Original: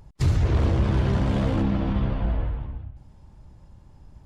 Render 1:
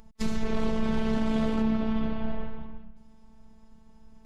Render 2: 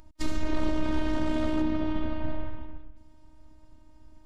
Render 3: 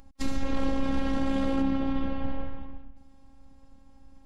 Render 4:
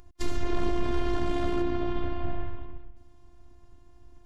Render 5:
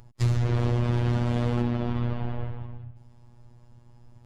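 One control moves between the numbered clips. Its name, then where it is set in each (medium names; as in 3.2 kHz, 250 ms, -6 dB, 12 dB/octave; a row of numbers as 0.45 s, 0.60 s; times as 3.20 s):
robot voice, frequency: 220 Hz, 310 Hz, 270 Hz, 350 Hz, 120 Hz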